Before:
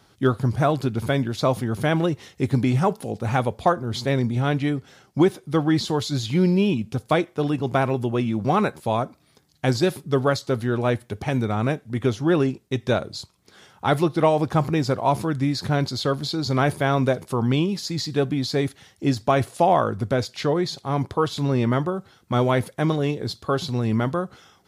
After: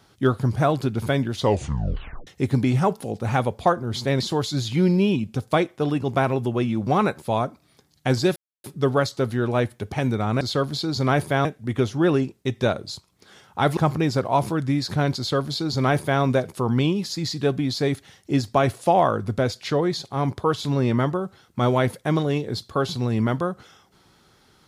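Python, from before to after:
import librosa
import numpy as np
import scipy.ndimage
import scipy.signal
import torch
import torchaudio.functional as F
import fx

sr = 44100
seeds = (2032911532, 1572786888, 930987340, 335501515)

y = fx.edit(x, sr, fx.tape_stop(start_s=1.32, length_s=0.95),
    fx.cut(start_s=4.2, length_s=1.58),
    fx.insert_silence(at_s=9.94, length_s=0.28),
    fx.cut(start_s=14.03, length_s=0.47),
    fx.duplicate(start_s=15.91, length_s=1.04, to_s=11.71), tone=tone)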